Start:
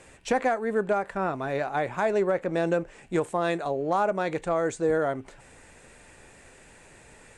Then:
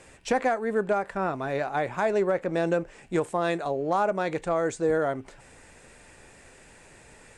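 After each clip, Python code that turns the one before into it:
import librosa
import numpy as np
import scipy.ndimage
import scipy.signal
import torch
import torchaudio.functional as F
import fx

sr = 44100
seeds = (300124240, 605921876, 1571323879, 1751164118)

y = fx.peak_eq(x, sr, hz=5100.0, db=3.0, octaves=0.26)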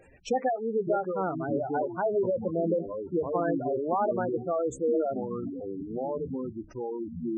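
y = fx.echo_pitch(x, sr, ms=435, semitones=-6, count=3, db_per_echo=-6.0)
y = fx.spec_gate(y, sr, threshold_db=-10, keep='strong')
y = fx.hum_notches(y, sr, base_hz=50, count=4)
y = y * 10.0 ** (-1.5 / 20.0)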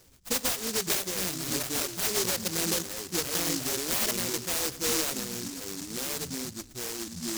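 y = fx.echo_feedback(x, sr, ms=111, feedback_pct=55, wet_db=-19.5)
y = fx.noise_mod_delay(y, sr, seeds[0], noise_hz=5900.0, depth_ms=0.44)
y = y * 10.0 ** (-2.0 / 20.0)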